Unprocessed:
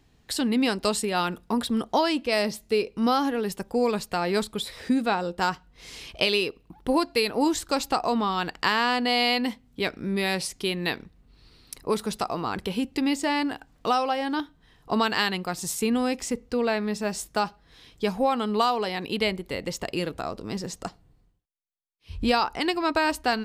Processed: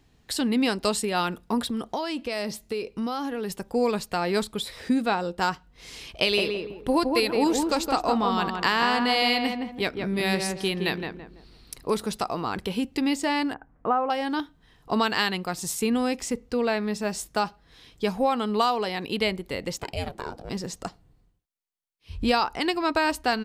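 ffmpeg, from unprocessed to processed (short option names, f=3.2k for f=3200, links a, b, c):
-filter_complex "[0:a]asettb=1/sr,asplit=3[a][b][c];[a]atrim=end=1.694[d];[b]atrim=start=1.69:end=3.68,asetpts=PTS-STARTPTS,afade=t=in:d=0.004:c=qsin,afade=t=out:st=1.986:d=0.004:c=qsin,acompressor=threshold=-25dB:ratio=6:attack=3.2:release=140:knee=1:detection=peak[e];[c]atrim=start=3.676[f];[d][e]acrossfade=d=0.004:c1=hsin:c2=qsin[g];[g][f]acrossfade=d=0.004:c1=qsin:c2=hsin,asplit=3[h][i][j];[h]afade=t=out:st=6.27:d=0.02[k];[i]asplit=2[l][m];[m]adelay=166,lowpass=f=1.5k:p=1,volume=-3.5dB,asplit=2[n][o];[o]adelay=166,lowpass=f=1.5k:p=1,volume=0.35,asplit=2[p][q];[q]adelay=166,lowpass=f=1.5k:p=1,volume=0.35,asplit=2[r][s];[s]adelay=166,lowpass=f=1.5k:p=1,volume=0.35,asplit=2[t][u];[u]adelay=166,lowpass=f=1.5k:p=1,volume=0.35[v];[l][n][p][r][t][v]amix=inputs=6:normalize=0,afade=t=in:st=6.27:d=0.02,afade=t=out:st=12.03:d=0.02[w];[j]afade=t=in:st=12.03:d=0.02[x];[k][w][x]amix=inputs=3:normalize=0,asettb=1/sr,asplit=3[y][z][aa];[y]atrim=end=13.544[ab];[z]atrim=start=13.54:end=14.1,asetpts=PTS-STARTPTS,afade=t=in:d=0.004:c=qsin,afade=t=out:st=0.556:d=0.004:c=qsin,lowpass=f=1.7k:w=0.5412,lowpass=f=1.7k:w=1.3066[ac];[aa]atrim=start=14.096[ad];[ab][ac]acrossfade=d=0.004:c1=hsin:c2=qsin[ae];[ae][ad]acrossfade=d=0.004:c1=qsin:c2=hsin,asplit=3[af][ag][ah];[af]afade=t=out:st=19.77:d=0.02[ai];[ag]aeval=exprs='val(0)*sin(2*PI*270*n/s)':c=same,afade=t=in:st=19.77:d=0.02,afade=t=out:st=20.49:d=0.02[aj];[ah]afade=t=in:st=20.49:d=0.02[ak];[ai][aj][ak]amix=inputs=3:normalize=0"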